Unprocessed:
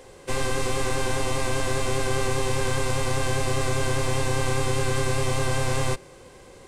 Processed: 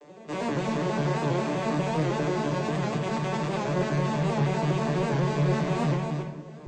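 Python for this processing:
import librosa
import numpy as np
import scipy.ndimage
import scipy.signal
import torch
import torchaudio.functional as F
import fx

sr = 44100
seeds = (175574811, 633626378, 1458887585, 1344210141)

p1 = fx.vocoder_arp(x, sr, chord='major triad', root=50, every_ms=81)
p2 = scipy.signal.sosfilt(scipy.signal.butter(2, 130.0, 'highpass', fs=sr, output='sos'), p1)
p3 = fx.over_compress(p2, sr, threshold_db=-30.0, ratio=-1.0, at=(2.54, 3.57))
p4 = 10.0 ** (-24.0 / 20.0) * np.tanh(p3 / 10.0 ** (-24.0 / 20.0))
p5 = fx.cheby_harmonics(p4, sr, harmonics=(8,), levels_db=(-40,), full_scale_db=-24.0)
p6 = fx.vibrato(p5, sr, rate_hz=0.72, depth_cents=27.0)
p7 = p6 + fx.echo_single(p6, sr, ms=269, db=-5.5, dry=0)
p8 = fx.room_shoebox(p7, sr, seeds[0], volume_m3=220.0, walls='mixed', distance_m=0.88)
y = fx.record_warp(p8, sr, rpm=78.0, depth_cents=100.0)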